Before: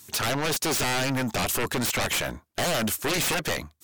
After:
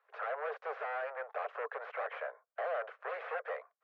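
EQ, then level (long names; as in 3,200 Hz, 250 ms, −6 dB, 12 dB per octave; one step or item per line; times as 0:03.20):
Butterworth high-pass 450 Hz 96 dB per octave
low-pass filter 1,600 Hz 24 dB per octave
parametric band 910 Hz −8 dB 0.22 octaves
−6.5 dB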